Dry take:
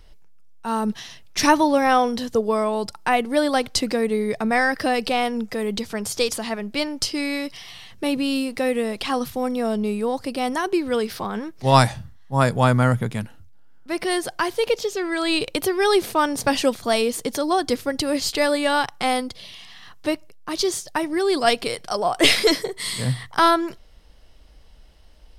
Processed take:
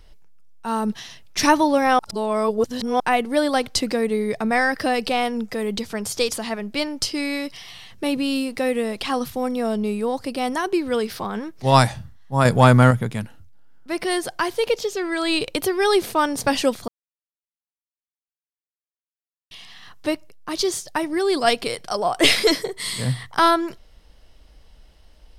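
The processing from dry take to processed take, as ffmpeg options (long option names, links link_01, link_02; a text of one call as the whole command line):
ffmpeg -i in.wav -filter_complex "[0:a]asettb=1/sr,asplit=3[link_01][link_02][link_03];[link_01]atrim=end=12.454[link_04];[link_02]atrim=start=12.45:end=12.91,asetpts=PTS-STARTPTS,afade=type=in:duration=0.004:curve=qsin,afade=type=out:start_time=0.456:duration=0.004:curve=qsin,acontrast=37[link_05];[link_03]atrim=start=12.906[link_06];[link_04][link_05]acrossfade=duration=0.004:curve1=hsin:curve2=qsin[link_07];[link_07][link_06]acrossfade=duration=0.004:curve1=qsin:curve2=hsin,asplit=5[link_08][link_09][link_10][link_11][link_12];[link_08]atrim=end=1.992[link_13];[link_09]atrim=start=1.988:end=3.002,asetpts=PTS-STARTPTS,areverse[link_14];[link_10]atrim=start=2.998:end=16.88,asetpts=PTS-STARTPTS,afade=type=out:start_time=13.878:duration=0.004:curve=hsin[link_15];[link_11]atrim=start=16.88:end=19.51,asetpts=PTS-STARTPTS,volume=0[link_16];[link_12]atrim=start=19.51,asetpts=PTS-STARTPTS,afade=type=in:duration=0.004:curve=hsin[link_17];[link_13][link_14]acrossfade=duration=0.004:curve1=hsin:curve2=hsin[link_18];[link_15][link_16][link_17]concat=n=3:v=0:a=1[link_19];[link_18][link_19]acrossfade=duration=0.004:curve1=hsin:curve2=hsin" out.wav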